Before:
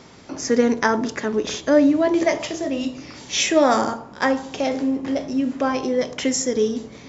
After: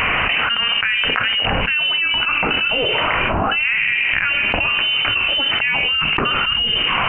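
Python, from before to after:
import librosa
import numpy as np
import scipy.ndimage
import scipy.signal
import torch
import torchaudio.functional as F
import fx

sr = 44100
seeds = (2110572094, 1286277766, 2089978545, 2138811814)

y = scipy.signal.sosfilt(scipy.signal.butter(2, 700.0, 'highpass', fs=sr, output='sos'), x)
y = fx.freq_invert(y, sr, carrier_hz=3300)
y = fx.env_flatten(y, sr, amount_pct=100)
y = y * librosa.db_to_amplitude(-1.0)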